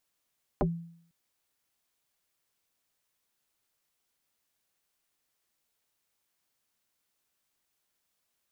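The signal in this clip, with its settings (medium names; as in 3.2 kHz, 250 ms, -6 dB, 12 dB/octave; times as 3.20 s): FM tone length 0.50 s, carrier 168 Hz, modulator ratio 1.25, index 4.6, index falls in 0.12 s exponential, decay 0.62 s, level -20.5 dB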